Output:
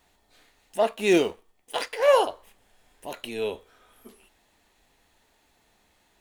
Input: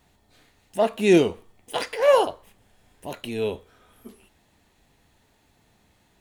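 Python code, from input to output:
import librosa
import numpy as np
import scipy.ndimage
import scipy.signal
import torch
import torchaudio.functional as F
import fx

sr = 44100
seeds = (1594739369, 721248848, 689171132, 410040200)

y = fx.law_mismatch(x, sr, coded='A', at=(0.91, 2.0))
y = fx.peak_eq(y, sr, hz=120.0, db=-11.5, octaves=2.2)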